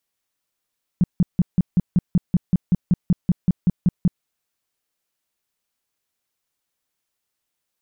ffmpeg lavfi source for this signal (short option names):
-f lavfi -i "aevalsrc='0.266*sin(2*PI*178*mod(t,0.19))*lt(mod(t,0.19),5/178)':d=3.23:s=44100"